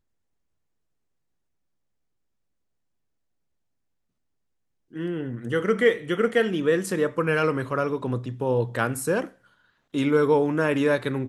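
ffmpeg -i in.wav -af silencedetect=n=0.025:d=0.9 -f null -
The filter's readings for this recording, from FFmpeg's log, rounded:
silence_start: 0.00
silence_end: 4.96 | silence_duration: 4.96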